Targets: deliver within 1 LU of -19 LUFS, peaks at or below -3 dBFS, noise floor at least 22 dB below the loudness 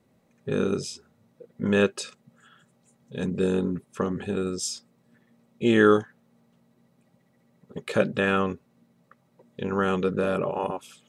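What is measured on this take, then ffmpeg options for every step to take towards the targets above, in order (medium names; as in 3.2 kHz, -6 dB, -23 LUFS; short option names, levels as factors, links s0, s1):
loudness -26.0 LUFS; peak level -5.5 dBFS; loudness target -19.0 LUFS
-> -af "volume=2.24,alimiter=limit=0.708:level=0:latency=1"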